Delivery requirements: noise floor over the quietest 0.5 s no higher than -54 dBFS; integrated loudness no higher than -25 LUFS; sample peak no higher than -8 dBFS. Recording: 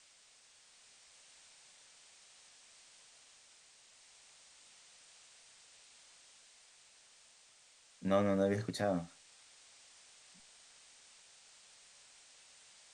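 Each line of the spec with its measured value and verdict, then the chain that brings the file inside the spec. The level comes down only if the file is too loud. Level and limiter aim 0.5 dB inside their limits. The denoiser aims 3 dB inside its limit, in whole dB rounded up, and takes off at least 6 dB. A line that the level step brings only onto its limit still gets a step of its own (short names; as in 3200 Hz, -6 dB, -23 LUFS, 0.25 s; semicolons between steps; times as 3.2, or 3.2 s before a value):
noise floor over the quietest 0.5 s -64 dBFS: OK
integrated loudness -35.0 LUFS: OK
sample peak -19.0 dBFS: OK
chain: none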